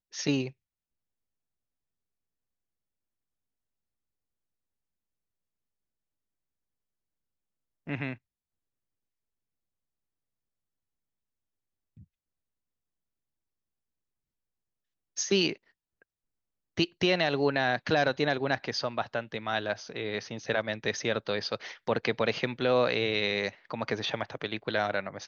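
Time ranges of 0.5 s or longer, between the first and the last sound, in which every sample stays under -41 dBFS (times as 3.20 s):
0.50–7.87 s
8.15–15.17 s
15.56–16.77 s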